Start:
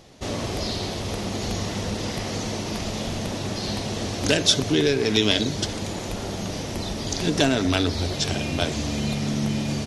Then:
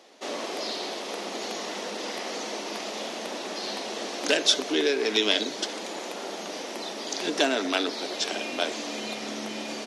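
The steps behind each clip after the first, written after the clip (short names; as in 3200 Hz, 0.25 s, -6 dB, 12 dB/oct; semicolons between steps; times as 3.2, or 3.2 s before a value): Bessel high-pass 420 Hz, order 8; high shelf 5800 Hz -7 dB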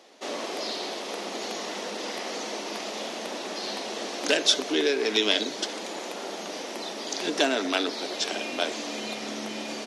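nothing audible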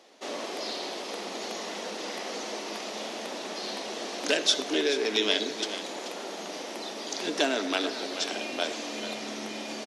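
echo 0.433 s -11.5 dB; reverb RT60 0.50 s, pre-delay 41 ms, DRR 16.5 dB; gain -2.5 dB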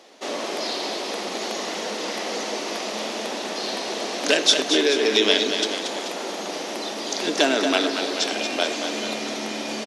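echo 0.23 s -7.5 dB; gain +6.5 dB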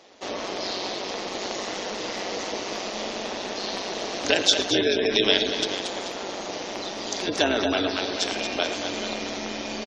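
echo 0.11 s -13.5 dB; spectral gate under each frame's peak -25 dB strong; AM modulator 190 Hz, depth 40%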